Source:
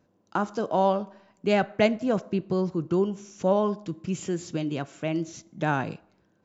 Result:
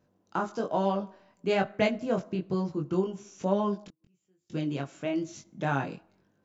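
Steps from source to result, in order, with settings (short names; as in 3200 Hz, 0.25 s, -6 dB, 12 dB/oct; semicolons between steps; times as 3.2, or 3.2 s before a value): 3.85–4.5 flipped gate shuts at -31 dBFS, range -38 dB; chorus 1.1 Hz, delay 20 ms, depth 2.4 ms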